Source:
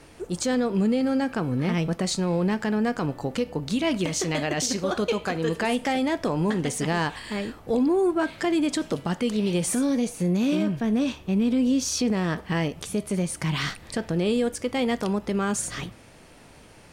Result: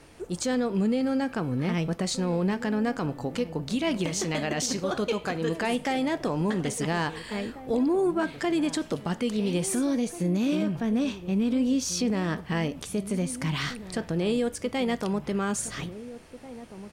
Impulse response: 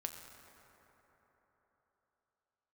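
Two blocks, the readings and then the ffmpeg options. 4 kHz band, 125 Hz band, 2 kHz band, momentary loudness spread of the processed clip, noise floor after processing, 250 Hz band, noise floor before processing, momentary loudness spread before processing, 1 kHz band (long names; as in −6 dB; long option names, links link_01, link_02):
−2.5 dB, −2.5 dB, −2.5 dB, 6 LU, −45 dBFS, −2.5 dB, −50 dBFS, 6 LU, −2.5 dB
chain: -filter_complex "[0:a]asplit=2[link_01][link_02];[link_02]adelay=1691,volume=-14dB,highshelf=frequency=4000:gain=-38[link_03];[link_01][link_03]amix=inputs=2:normalize=0,volume=-2.5dB"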